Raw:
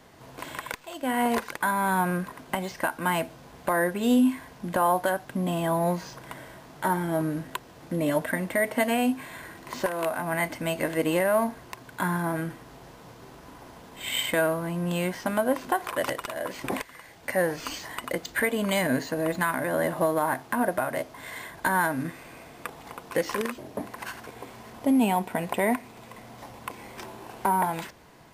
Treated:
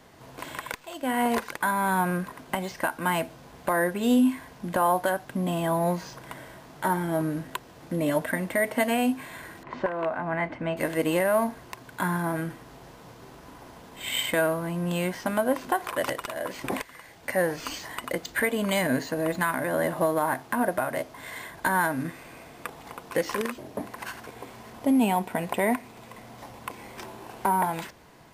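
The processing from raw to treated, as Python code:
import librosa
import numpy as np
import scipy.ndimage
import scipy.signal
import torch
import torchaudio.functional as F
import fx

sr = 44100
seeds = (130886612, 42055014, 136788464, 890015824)

y = fx.lowpass(x, sr, hz=2100.0, slope=12, at=(9.63, 10.77))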